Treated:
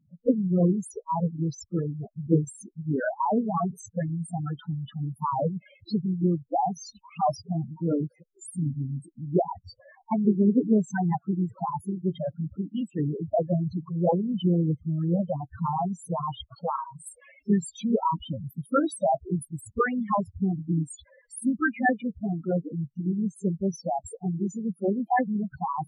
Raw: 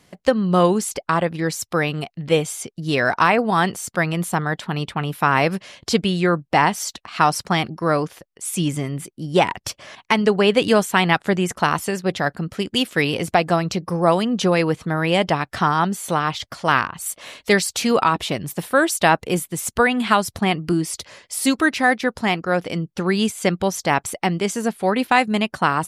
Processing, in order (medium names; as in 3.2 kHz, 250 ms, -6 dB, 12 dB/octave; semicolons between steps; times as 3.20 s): loudest bins only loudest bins 4; formant shift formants -3 st; trim -2 dB